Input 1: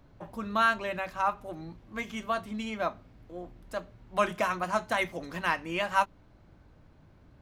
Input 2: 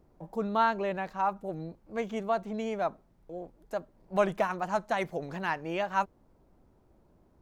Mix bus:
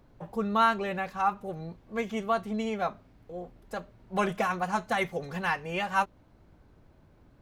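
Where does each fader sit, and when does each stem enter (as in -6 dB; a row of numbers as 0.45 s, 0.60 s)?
-2.5 dB, -1.0 dB; 0.00 s, 0.00 s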